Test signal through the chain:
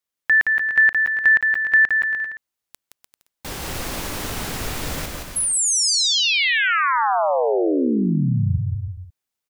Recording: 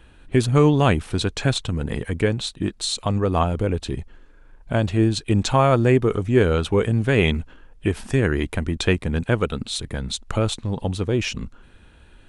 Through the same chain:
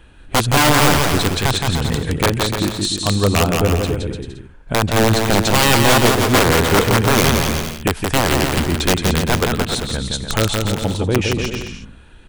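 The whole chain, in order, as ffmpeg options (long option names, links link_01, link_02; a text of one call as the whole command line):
ffmpeg -i in.wav -af "aeval=exprs='(mod(3.76*val(0)+1,2)-1)/3.76':channel_layout=same,aecho=1:1:170|297.5|393.1|464.8|518.6:0.631|0.398|0.251|0.158|0.1,volume=3.5dB" out.wav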